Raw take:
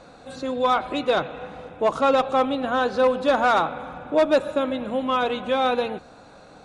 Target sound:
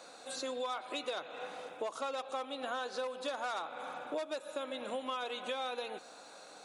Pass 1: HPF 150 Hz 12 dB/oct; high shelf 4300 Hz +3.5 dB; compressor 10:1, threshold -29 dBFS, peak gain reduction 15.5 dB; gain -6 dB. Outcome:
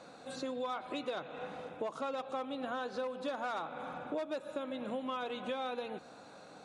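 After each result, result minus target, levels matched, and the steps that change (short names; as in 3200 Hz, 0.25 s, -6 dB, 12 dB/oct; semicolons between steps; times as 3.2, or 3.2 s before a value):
125 Hz band +11.5 dB; 8000 Hz band -8.5 dB
change: HPF 380 Hz 12 dB/oct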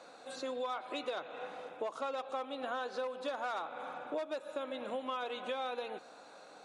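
8000 Hz band -8.0 dB
change: high shelf 4300 Hz +15.5 dB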